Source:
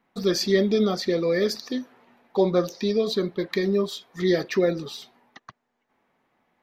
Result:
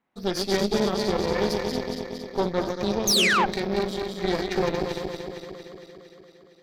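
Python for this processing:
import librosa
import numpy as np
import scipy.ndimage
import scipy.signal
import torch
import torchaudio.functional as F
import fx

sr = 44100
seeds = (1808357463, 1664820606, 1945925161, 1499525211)

y = fx.reverse_delay_fb(x, sr, ms=115, feedback_pct=83, wet_db=-4)
y = fx.spec_paint(y, sr, seeds[0], shape='fall', start_s=3.07, length_s=0.39, low_hz=730.0, high_hz=6800.0, level_db=-16.0)
y = fx.cheby_harmonics(y, sr, harmonics=(6, 7), levels_db=(-16, -28), full_scale_db=-5.5)
y = y * 10.0 ** (-5.0 / 20.0)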